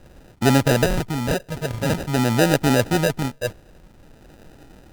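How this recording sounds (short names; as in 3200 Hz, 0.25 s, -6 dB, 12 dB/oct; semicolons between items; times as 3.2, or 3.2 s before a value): phasing stages 4, 0.49 Hz, lowest notch 320–1200 Hz; aliases and images of a low sample rate 1100 Hz, jitter 0%; Opus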